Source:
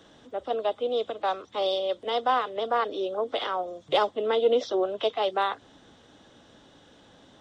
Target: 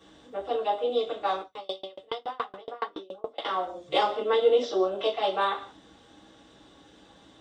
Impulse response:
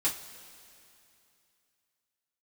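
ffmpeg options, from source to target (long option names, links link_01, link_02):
-filter_complex "[1:a]atrim=start_sample=2205,afade=type=out:start_time=0.25:duration=0.01,atrim=end_sample=11466[link_01];[0:a][link_01]afir=irnorm=-1:irlink=0,asettb=1/sr,asplit=3[link_02][link_03][link_04];[link_02]atrim=end=1.414[link_05];[link_03]atrim=start=1.41:end=3.45,asetpts=PTS-STARTPTS,afade=type=in:duration=0.004:curve=qsin,afade=type=out:start_time=2.036:duration=0.004:curve=qsin,aeval=exprs='val(0)*pow(10,-33*if(lt(mod(7.1*n/s,1),2*abs(7.1)/1000),1-mod(7.1*n/s,1)/(2*abs(7.1)/1000),(mod(7.1*n/s,1)-2*abs(7.1)/1000)/(1-2*abs(7.1)/1000))/20)':channel_layout=same[link_06];[link_04]atrim=start=3.446[link_07];[link_05][link_06]acrossfade=duration=0.004:curve1=hsin:curve2=qsin[link_08];[link_08][link_07]acrossfade=duration=0.004:curve1=qsin:curve2=hsin,volume=-6dB"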